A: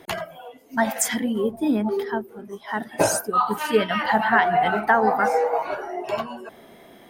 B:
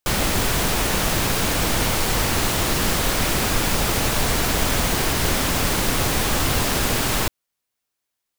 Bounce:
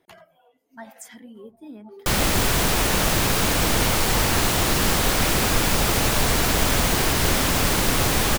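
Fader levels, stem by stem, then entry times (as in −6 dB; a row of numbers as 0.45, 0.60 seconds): −19.0, +0.5 decibels; 0.00, 2.00 seconds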